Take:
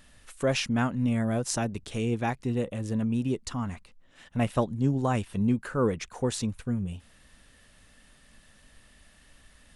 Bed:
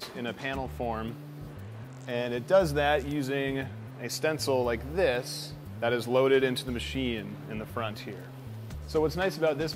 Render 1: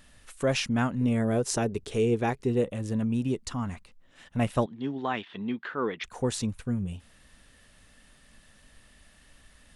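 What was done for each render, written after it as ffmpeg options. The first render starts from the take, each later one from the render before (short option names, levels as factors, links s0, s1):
-filter_complex "[0:a]asettb=1/sr,asplit=3[s0][s1][s2];[s0]atrim=end=1.014[s3];[s1]atrim=start=1.01:end=2.64,asetpts=PTS-STARTPTS,afade=t=in:d=0.004:c=qsin,afade=t=out:st=1.626:d=0.004:c=qsin,equalizer=f=420:t=o:w=0.42:g=11.5[s4];[s2]atrim=start=2.636[s5];[s3][s4]acrossfade=d=0.004:c1=hsin:c2=qsin[s6];[s6][s5]acrossfade=d=0.004:c1=qsin:c2=hsin,asettb=1/sr,asplit=3[s7][s8][s9];[s7]atrim=end=4.664[s10];[s8]atrim=start=4.66:end=6.04,asetpts=PTS-STARTPTS,afade=t=in:d=0.004:c=qsin,afade=t=out:st=1.376:d=0.004:c=qsin,highpass=320,equalizer=f=540:t=q:w=4:g=-8,equalizer=f=1900:t=q:w=4:g=6,equalizer=f=3400:t=q:w=4:g=9,lowpass=f=4100:w=0.5412,lowpass=f=4100:w=1.3066[s11];[s9]atrim=start=6.036[s12];[s10][s11]acrossfade=d=0.004:c1=hsin:c2=qsin[s13];[s13][s12]acrossfade=d=0.004:c1=qsin:c2=hsin"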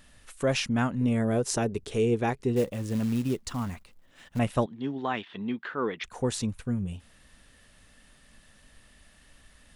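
-filter_complex "[0:a]asettb=1/sr,asplit=3[s0][s1][s2];[s0]atrim=end=2.564[s3];[s1]atrim=start=2.56:end=4.39,asetpts=PTS-STARTPTS,afade=t=in:d=0.004:c=qsin,afade=t=out:st=1.826:d=0.004:c=qsin,acrusher=bits=5:mode=log:mix=0:aa=0.000001[s4];[s2]atrim=start=4.386[s5];[s3][s4]acrossfade=d=0.004:c1=hsin:c2=qsin[s6];[s6][s5]acrossfade=d=0.004:c1=qsin:c2=hsin"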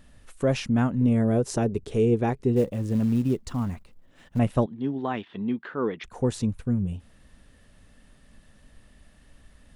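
-af "tiltshelf=f=850:g=5"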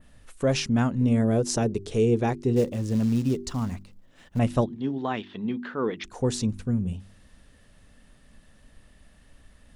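-af "bandreject=f=48.93:t=h:w=4,bandreject=f=97.86:t=h:w=4,bandreject=f=146.79:t=h:w=4,bandreject=f=195.72:t=h:w=4,bandreject=f=244.65:t=h:w=4,bandreject=f=293.58:t=h:w=4,bandreject=f=342.51:t=h:w=4,bandreject=f=391.44:t=h:w=4,adynamicequalizer=threshold=0.00178:dfrequency=5500:dqfactor=0.84:tfrequency=5500:tqfactor=0.84:attack=5:release=100:ratio=0.375:range=4:mode=boostabove:tftype=bell"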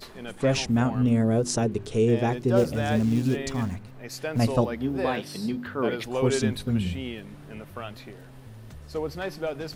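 -filter_complex "[1:a]volume=0.631[s0];[0:a][s0]amix=inputs=2:normalize=0"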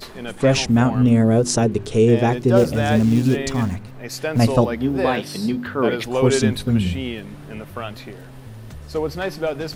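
-af "volume=2.24,alimiter=limit=0.708:level=0:latency=1"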